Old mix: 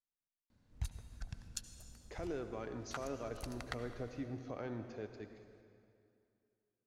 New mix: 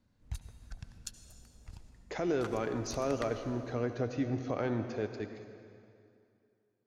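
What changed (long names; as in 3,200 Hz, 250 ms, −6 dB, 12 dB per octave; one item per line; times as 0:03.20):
speech +10.0 dB
background: entry −0.50 s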